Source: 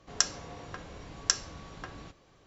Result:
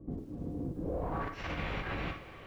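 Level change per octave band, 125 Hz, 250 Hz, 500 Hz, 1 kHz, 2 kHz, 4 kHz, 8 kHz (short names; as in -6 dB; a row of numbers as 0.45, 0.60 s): +8.0 dB, +10.5 dB, +7.5 dB, +3.0 dB, 0.0 dB, -15.0 dB, n/a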